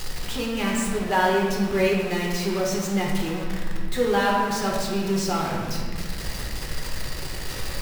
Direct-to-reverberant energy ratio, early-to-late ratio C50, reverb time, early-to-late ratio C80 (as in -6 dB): -2.5 dB, 1.0 dB, 1.7 s, 3.0 dB